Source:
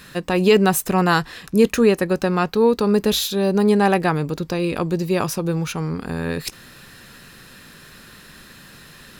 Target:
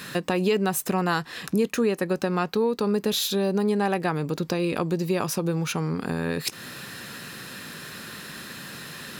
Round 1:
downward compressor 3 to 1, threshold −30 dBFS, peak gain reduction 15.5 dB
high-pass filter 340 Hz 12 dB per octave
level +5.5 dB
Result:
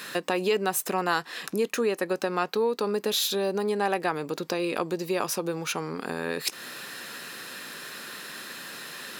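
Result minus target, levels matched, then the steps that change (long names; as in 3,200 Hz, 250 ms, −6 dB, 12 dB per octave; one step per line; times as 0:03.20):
125 Hz band −7.5 dB
change: high-pass filter 120 Hz 12 dB per octave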